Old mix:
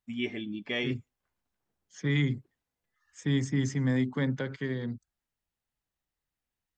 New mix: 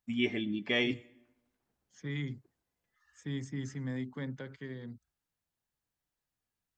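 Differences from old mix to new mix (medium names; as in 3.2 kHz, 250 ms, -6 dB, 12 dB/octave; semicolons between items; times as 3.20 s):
second voice -10.0 dB; reverb: on, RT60 1.0 s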